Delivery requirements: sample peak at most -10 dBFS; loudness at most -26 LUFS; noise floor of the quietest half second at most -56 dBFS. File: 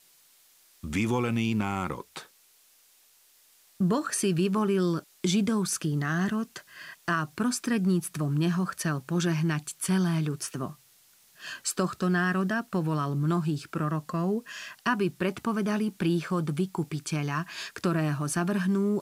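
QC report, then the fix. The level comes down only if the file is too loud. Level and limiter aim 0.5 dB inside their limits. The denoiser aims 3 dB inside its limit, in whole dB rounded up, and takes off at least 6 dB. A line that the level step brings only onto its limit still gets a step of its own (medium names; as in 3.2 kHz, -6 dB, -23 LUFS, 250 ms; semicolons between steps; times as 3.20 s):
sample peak -14.0 dBFS: pass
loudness -28.5 LUFS: pass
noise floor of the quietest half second -61 dBFS: pass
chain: none needed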